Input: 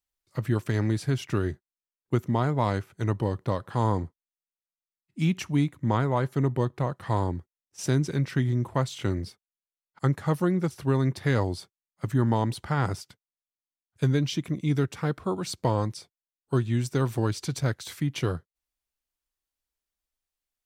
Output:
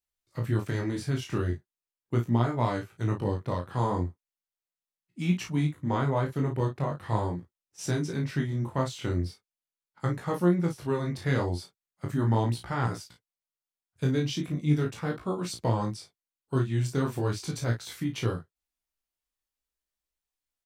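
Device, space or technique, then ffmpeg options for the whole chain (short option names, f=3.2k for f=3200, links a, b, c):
double-tracked vocal: -filter_complex "[0:a]asplit=2[a][b];[b]adelay=34,volume=-5.5dB[c];[a][c]amix=inputs=2:normalize=0,flanger=delay=16.5:depth=6.7:speed=0.39"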